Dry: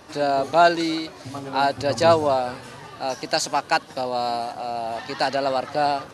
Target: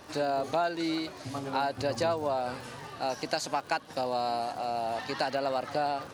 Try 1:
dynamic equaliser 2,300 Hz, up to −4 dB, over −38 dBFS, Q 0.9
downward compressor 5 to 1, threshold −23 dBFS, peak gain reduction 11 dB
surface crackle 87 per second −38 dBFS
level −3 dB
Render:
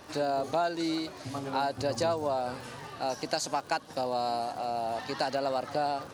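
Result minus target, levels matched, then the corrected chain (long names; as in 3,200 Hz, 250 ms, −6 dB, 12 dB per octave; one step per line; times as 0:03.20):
8,000 Hz band +2.5 dB
dynamic equaliser 6,900 Hz, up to −4 dB, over −38 dBFS, Q 0.9
downward compressor 5 to 1, threshold −23 dBFS, peak gain reduction 11.5 dB
surface crackle 87 per second −38 dBFS
level −3 dB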